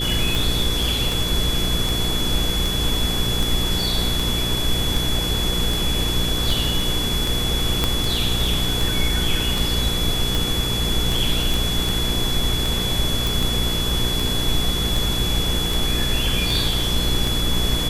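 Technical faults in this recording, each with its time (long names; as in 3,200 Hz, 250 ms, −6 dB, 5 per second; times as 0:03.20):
mains hum 60 Hz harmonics 8 −26 dBFS
scratch tick 78 rpm
whistle 3,400 Hz −24 dBFS
0:07.84: click −4 dBFS
0:11.54: click
0:13.27: click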